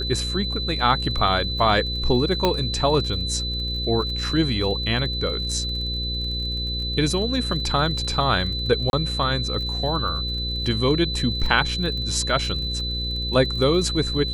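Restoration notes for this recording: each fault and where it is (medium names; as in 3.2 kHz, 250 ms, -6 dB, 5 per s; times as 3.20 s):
buzz 60 Hz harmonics 9 -29 dBFS
crackle 36 per s -32 dBFS
whine 4 kHz -27 dBFS
2.45 s: pop -6 dBFS
8.90–8.93 s: dropout 31 ms
11.46 s: dropout 2.6 ms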